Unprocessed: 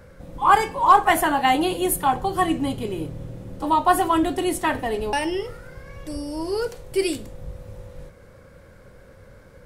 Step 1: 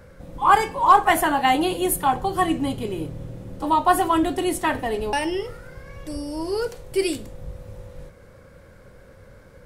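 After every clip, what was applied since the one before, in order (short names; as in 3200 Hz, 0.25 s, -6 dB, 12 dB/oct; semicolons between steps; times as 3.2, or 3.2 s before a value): nothing audible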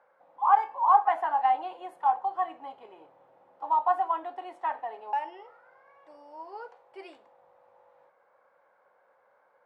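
ladder band-pass 930 Hz, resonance 60%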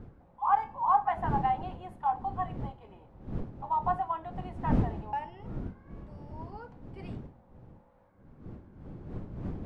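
wind noise 200 Hz -34 dBFS; gain -4.5 dB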